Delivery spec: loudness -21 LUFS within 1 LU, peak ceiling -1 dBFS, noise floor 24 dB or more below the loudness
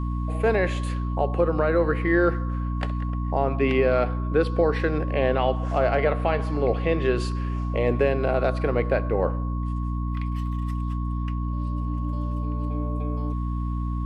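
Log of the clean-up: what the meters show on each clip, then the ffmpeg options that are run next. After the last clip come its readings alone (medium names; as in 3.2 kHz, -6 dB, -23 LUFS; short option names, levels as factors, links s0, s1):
hum 60 Hz; highest harmonic 300 Hz; hum level -24 dBFS; steady tone 1.1 kHz; tone level -38 dBFS; loudness -25.0 LUFS; peak level -9.0 dBFS; loudness target -21.0 LUFS
-> -af "bandreject=f=60:t=h:w=4,bandreject=f=120:t=h:w=4,bandreject=f=180:t=h:w=4,bandreject=f=240:t=h:w=4,bandreject=f=300:t=h:w=4"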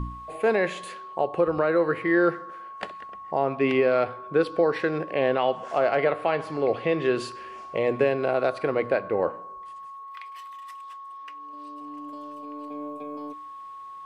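hum not found; steady tone 1.1 kHz; tone level -38 dBFS
-> -af "bandreject=f=1100:w=30"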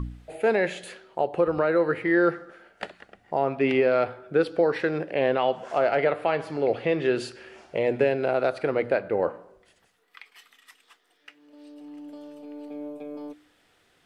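steady tone not found; loudness -25.0 LUFS; peak level -10.0 dBFS; loudness target -21.0 LUFS
-> -af "volume=1.58"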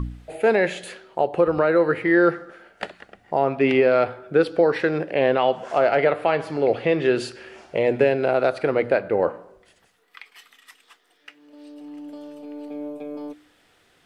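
loudness -21.0 LUFS; peak level -6.0 dBFS; noise floor -61 dBFS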